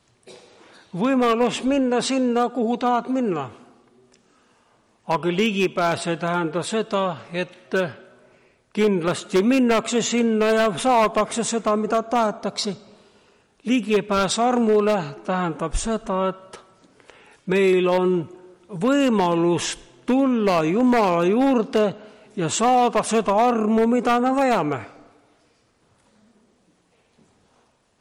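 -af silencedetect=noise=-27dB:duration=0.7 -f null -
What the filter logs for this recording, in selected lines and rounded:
silence_start: 0.00
silence_end: 0.94 | silence_duration: 0.94
silence_start: 3.46
silence_end: 5.09 | silence_duration: 1.63
silence_start: 7.90
silence_end: 8.75 | silence_duration: 0.85
silence_start: 12.73
silence_end: 13.67 | silence_duration: 0.93
silence_start: 24.82
silence_end: 28.01 | silence_duration: 3.19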